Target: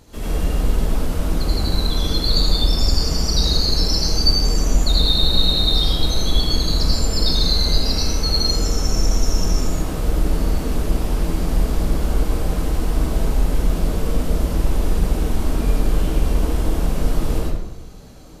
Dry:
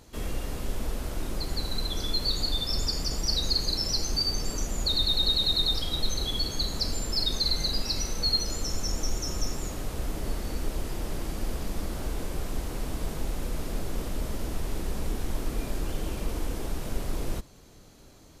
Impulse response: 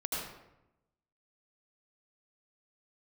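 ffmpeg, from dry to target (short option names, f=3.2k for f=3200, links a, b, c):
-filter_complex "[0:a]lowshelf=f=340:g=3.5[a];[1:a]atrim=start_sample=2205[b];[a][b]afir=irnorm=-1:irlink=0,volume=4dB"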